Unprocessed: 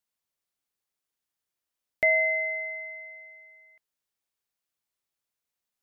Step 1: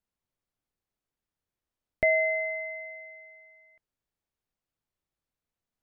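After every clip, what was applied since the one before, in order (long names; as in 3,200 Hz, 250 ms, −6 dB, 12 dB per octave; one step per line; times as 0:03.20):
spectral tilt −3 dB per octave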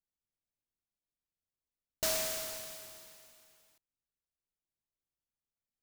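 short delay modulated by noise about 5,600 Hz, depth 0.24 ms
level −9 dB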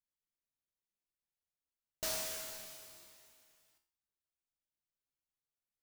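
tuned comb filter 68 Hz, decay 0.49 s, harmonics all, mix 80%
level +3 dB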